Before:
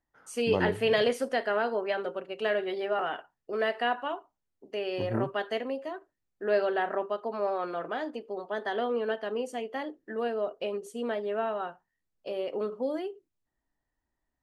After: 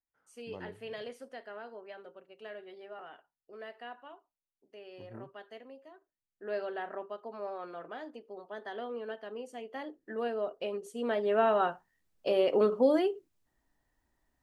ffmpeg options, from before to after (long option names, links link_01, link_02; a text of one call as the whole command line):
ffmpeg -i in.wav -af "volume=6.5dB,afade=type=in:start_time=5.95:duration=0.59:silence=0.421697,afade=type=in:start_time=9.51:duration=0.62:silence=0.473151,afade=type=in:start_time=10.95:duration=0.67:silence=0.334965" out.wav